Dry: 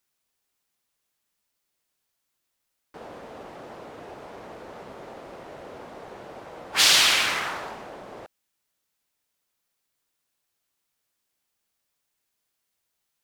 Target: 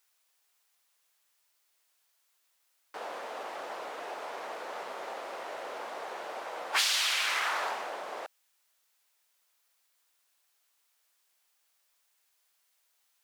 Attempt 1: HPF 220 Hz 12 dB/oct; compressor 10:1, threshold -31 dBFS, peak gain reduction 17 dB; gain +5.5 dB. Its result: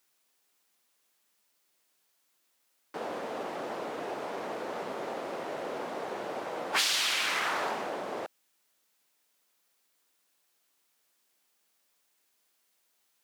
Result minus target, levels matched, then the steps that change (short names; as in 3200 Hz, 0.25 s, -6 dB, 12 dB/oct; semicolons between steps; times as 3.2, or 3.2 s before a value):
250 Hz band +11.5 dB
change: HPF 650 Hz 12 dB/oct